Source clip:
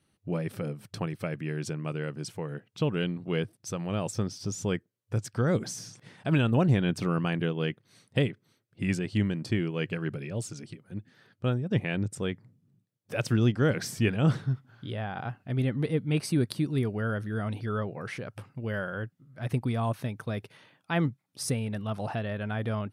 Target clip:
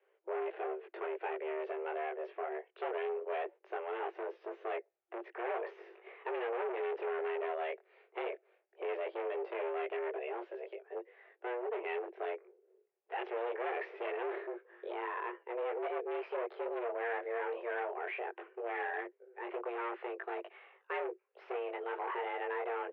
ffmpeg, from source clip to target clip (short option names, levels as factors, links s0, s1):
-af "asoftclip=type=tanh:threshold=0.0668,flanger=delay=18.5:depth=4:speed=0.2,asoftclip=type=hard:threshold=0.0141,highpass=f=150:t=q:w=0.5412,highpass=f=150:t=q:w=1.307,lowpass=f=2400:t=q:w=0.5176,lowpass=f=2400:t=q:w=0.7071,lowpass=f=2400:t=q:w=1.932,afreqshift=240,volume=1.5"